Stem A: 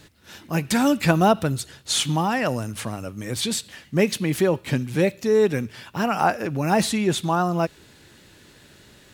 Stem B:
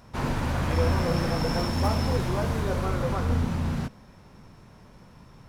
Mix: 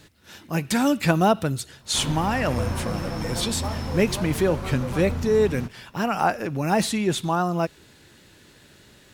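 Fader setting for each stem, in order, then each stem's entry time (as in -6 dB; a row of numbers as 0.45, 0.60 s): -1.5, -4.0 dB; 0.00, 1.80 s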